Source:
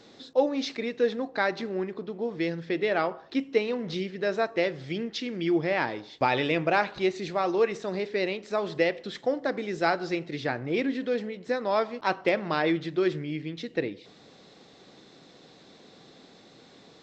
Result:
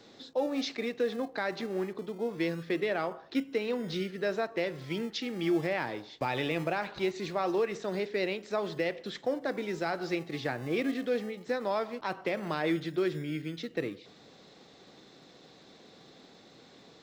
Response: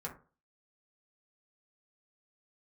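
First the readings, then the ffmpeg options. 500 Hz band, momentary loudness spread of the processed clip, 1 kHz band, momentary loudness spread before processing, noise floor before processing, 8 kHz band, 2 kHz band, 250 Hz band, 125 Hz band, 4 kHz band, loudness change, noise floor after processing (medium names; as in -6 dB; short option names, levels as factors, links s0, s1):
-4.5 dB, 5 LU, -6.5 dB, 7 LU, -54 dBFS, no reading, -5.5 dB, -3.5 dB, -2.5 dB, -3.5 dB, -4.5 dB, -56 dBFS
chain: -filter_complex "[0:a]acrossover=split=190[s0][s1];[s0]acrusher=samples=36:mix=1:aa=0.000001:lfo=1:lforange=21.6:lforate=0.21[s2];[s1]alimiter=limit=0.112:level=0:latency=1:release=108[s3];[s2][s3]amix=inputs=2:normalize=0,volume=0.794"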